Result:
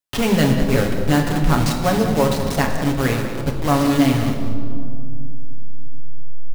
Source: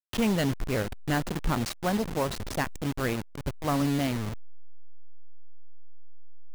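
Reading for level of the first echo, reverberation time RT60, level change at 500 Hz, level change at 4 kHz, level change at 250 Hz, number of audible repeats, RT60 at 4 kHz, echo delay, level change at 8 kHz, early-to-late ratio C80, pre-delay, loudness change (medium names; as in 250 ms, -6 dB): -12.0 dB, 2.4 s, +11.0 dB, +9.5 dB, +11.0 dB, 1, 1.3 s, 193 ms, +9.0 dB, 6.0 dB, 7 ms, +10.5 dB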